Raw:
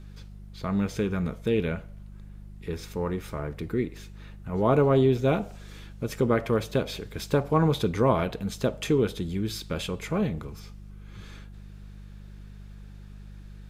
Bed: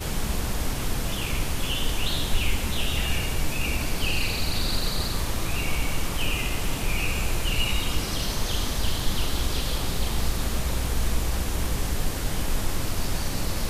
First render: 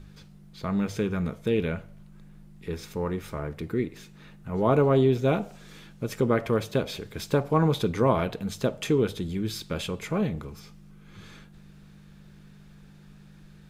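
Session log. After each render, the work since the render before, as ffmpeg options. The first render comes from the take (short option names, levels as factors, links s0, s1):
-af "bandreject=f=50:t=h:w=4,bandreject=f=100:t=h:w=4"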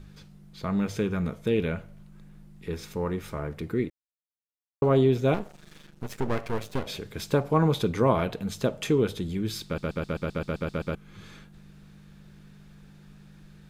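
-filter_complex "[0:a]asettb=1/sr,asplit=3[s0][s1][s2];[s0]atrim=end=5.344[s3];[s1]atrim=start=5.34:end=6.87,asetpts=PTS-STARTPTS,afade=t=in:d=0.004:c=qsin,afade=t=out:st=1.526:d=0.004:c=qsin,aeval=exprs='max(val(0),0)':c=same[s4];[s2]atrim=start=6.866[s5];[s3][s4]acrossfade=d=0.004:c1=hsin:c2=qsin[s6];[s6][s5]acrossfade=d=0.004:c1=qsin:c2=hsin,asplit=13[s7][s8][s9][s10][s11][s12][s13][s14][s15][s16][s17][s18][s19];[s7]atrim=end=3.9,asetpts=PTS-STARTPTS,afade=t=out:st=3.896:d=0.004:c=hsin[s20];[s8]atrim=start=3.9:end=4.82,asetpts=PTS-STARTPTS,volume=0[s21];[s9]atrim=start=4.82:end=9.782,asetpts=PTS-STARTPTS,afade=t=in:d=0.004:c=hsin[s22];[s10]atrim=start=9.648:end=9.782[s23];[s11]atrim=start=9.648:end=9.782[s24];[s12]atrim=start=9.648:end=9.782[s25];[s13]atrim=start=9.648:end=9.782[s26];[s14]atrim=start=9.648:end=9.782[s27];[s15]atrim=start=9.648:end=9.782[s28];[s16]atrim=start=9.648:end=9.782[s29];[s17]atrim=start=9.648:end=9.782[s30];[s18]atrim=start=9.648:end=9.782[s31];[s19]atrim=start=10.948[s32];[s20][s21][s22]concat=n=3:v=0:a=1[s33];[s33][s23]acrossfade=d=0.004:c1=hsin:c2=hsin[s34];[s34][s24]acrossfade=d=0.004:c1=hsin:c2=hsin[s35];[s35][s25]acrossfade=d=0.004:c1=hsin:c2=hsin[s36];[s36][s26]acrossfade=d=0.004:c1=hsin:c2=hsin[s37];[s37][s27]acrossfade=d=0.004:c1=hsin:c2=hsin[s38];[s38][s28]acrossfade=d=0.004:c1=hsin:c2=hsin[s39];[s39][s29]acrossfade=d=0.004:c1=hsin:c2=hsin[s40];[s40][s30]acrossfade=d=0.004:c1=hsin:c2=hsin[s41];[s41][s31]acrossfade=d=0.004:c1=hsin:c2=hsin[s42];[s42][s32]acrossfade=d=0.004:c1=hsin:c2=hsin"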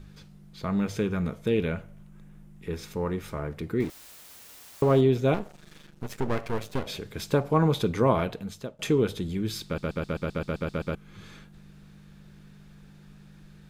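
-filter_complex "[0:a]asettb=1/sr,asplit=3[s0][s1][s2];[s0]atrim=end=1.814[s3];[s1]atrim=start=1.81:end=2.74,asetpts=PTS-STARTPTS,afade=t=in:d=0.004:c=qsin,afade=t=out:st=0.926:d=0.004:c=qsin,equalizer=f=4400:w=2.7:g=-6[s4];[s2]atrim=start=2.736[s5];[s3][s4]acrossfade=d=0.004:c1=hsin:c2=qsin[s6];[s6][s5]acrossfade=d=0.004:c1=qsin:c2=hsin,asettb=1/sr,asplit=3[s7][s8][s9];[s7]atrim=end=3.804[s10];[s8]atrim=start=3.8:end=5.01,asetpts=PTS-STARTPTS,afade=t=in:d=0.004:c=qsin,afade=t=out:st=1.206:d=0.004:c=qsin,aeval=exprs='val(0)+0.5*0.0141*sgn(val(0))':c=same[s11];[s9]atrim=start=5.006[s12];[s10][s11]acrossfade=d=0.004:c1=hsin:c2=qsin[s13];[s13][s12]acrossfade=d=0.004:c1=qsin:c2=hsin,asplit=2[s14][s15];[s14]atrim=end=8.79,asetpts=PTS-STARTPTS,afade=t=out:st=8.19:d=0.6:silence=0.0891251[s16];[s15]atrim=start=8.79,asetpts=PTS-STARTPTS,afade=t=in:d=0.004:c=hsin:silence=0.0891251[s17];[s16][s17]concat=n=2:v=0:a=1"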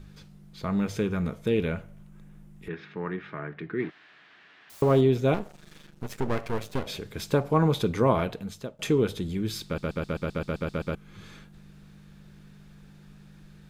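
-filter_complex "[0:a]asettb=1/sr,asplit=3[s0][s1][s2];[s0]atrim=end=2.684[s3];[s1]atrim=start=2.68:end=4.7,asetpts=PTS-STARTPTS,afade=t=in:d=0.004:c=qsin,afade=t=out:st=2.016:d=0.004:c=qsin,highpass=f=150:w=0.5412,highpass=f=150:w=1.3066,equalizer=f=230:t=q:w=4:g=-7,equalizer=f=520:t=q:w=4:g=-10,equalizer=f=900:t=q:w=4:g=-4,equalizer=f=1700:t=q:w=4:g=9,lowpass=f=3200:w=0.5412,lowpass=f=3200:w=1.3066[s4];[s2]atrim=start=4.696[s5];[s3][s4]acrossfade=d=0.004:c1=hsin:c2=qsin[s6];[s6][s5]acrossfade=d=0.004:c1=qsin:c2=hsin"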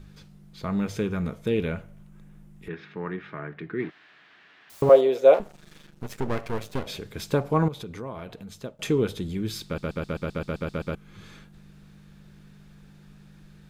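-filter_complex "[0:a]asettb=1/sr,asplit=3[s0][s1][s2];[s0]atrim=end=4.894[s3];[s1]atrim=start=4.89:end=5.4,asetpts=PTS-STARTPTS,afade=t=in:d=0.004:c=qsin,afade=t=out:st=0.506:d=0.004:c=qsin,highpass=f=540:t=q:w=5.2[s4];[s2]atrim=start=5.396[s5];[s3][s4]acrossfade=d=0.004:c1=hsin:c2=qsin[s6];[s6][s5]acrossfade=d=0.004:c1=qsin:c2=hsin,asettb=1/sr,asplit=3[s7][s8][s9];[s7]atrim=end=7.684[s10];[s8]atrim=start=7.68:end=8.64,asetpts=PTS-STARTPTS,afade=t=in:d=0.004:c=qsin,afade=t=out:st=0.956:d=0.004:c=qsin,acompressor=threshold=0.0112:ratio=2.5:attack=3.2:release=140:knee=1:detection=peak[s11];[s9]atrim=start=8.636[s12];[s10][s11]acrossfade=d=0.004:c1=hsin:c2=qsin[s13];[s13][s12]acrossfade=d=0.004:c1=qsin:c2=hsin"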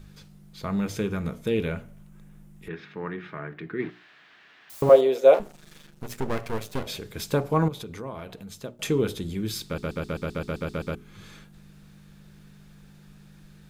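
-af "highshelf=f=6500:g=6.5,bandreject=f=60:t=h:w=6,bandreject=f=120:t=h:w=6,bandreject=f=180:t=h:w=6,bandreject=f=240:t=h:w=6,bandreject=f=300:t=h:w=6,bandreject=f=360:t=h:w=6,bandreject=f=420:t=h:w=6"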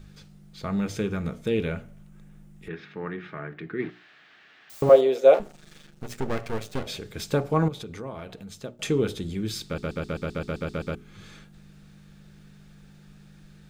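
-af "equalizer=f=12000:t=o:w=0.3:g=-12,bandreject=f=1000:w=11"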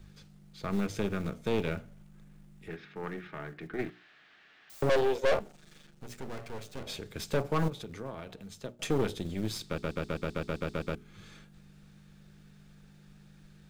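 -filter_complex "[0:a]aeval=exprs='(tanh(14.1*val(0)+0.8)-tanh(0.8))/14.1':c=same,acrossover=split=230[s0][s1];[s0]acrusher=bits=5:mode=log:mix=0:aa=0.000001[s2];[s2][s1]amix=inputs=2:normalize=0"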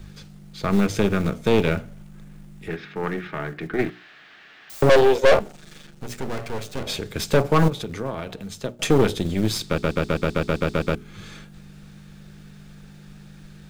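-af "volume=3.76"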